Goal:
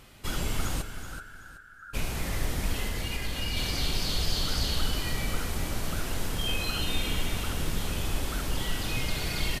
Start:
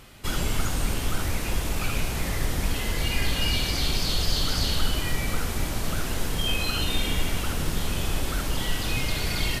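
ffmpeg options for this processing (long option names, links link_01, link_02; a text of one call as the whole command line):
ffmpeg -i in.wav -filter_complex "[0:a]asplit=3[link_01][link_02][link_03];[link_01]afade=type=out:start_time=0.81:duration=0.02[link_04];[link_02]asuperpass=centerf=1500:order=8:qfactor=4.4,afade=type=in:start_time=0.81:duration=0.02,afade=type=out:start_time=1.93:duration=0.02[link_05];[link_03]afade=type=in:start_time=1.93:duration=0.02[link_06];[link_04][link_05][link_06]amix=inputs=3:normalize=0,asettb=1/sr,asplit=3[link_07][link_08][link_09];[link_07]atrim=end=2.824[link_10];[link_08]atrim=start=2.82:end=3.57,asetpts=PTS-STARTPTS,afade=type=in:duration=0.004:curve=qsin,afade=type=out:start_time=0.746:duration=0.004:curve=qsin,acompressor=threshold=-23dB:ratio=6[link_11];[link_09]atrim=start=3.566[link_12];[link_10][link_11]acrossfade=duration=0.004:curve1=hsin:curve2=qsin[link_13];[link_13][link_12]acrossfade=duration=0.004:curve1=qsin:curve2=hsin,asplit=2[link_14][link_15];[link_15]aecho=0:1:378|756|1134:0.316|0.0917|0.0266[link_16];[link_14][link_16]amix=inputs=2:normalize=0,volume=-4dB" out.wav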